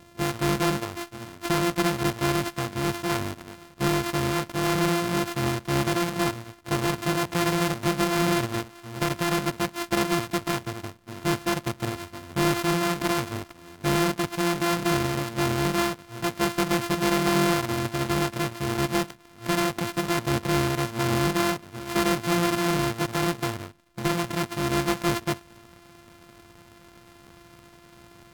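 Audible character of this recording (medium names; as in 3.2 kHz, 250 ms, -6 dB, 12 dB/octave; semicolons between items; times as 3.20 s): a buzz of ramps at a fixed pitch in blocks of 128 samples; AAC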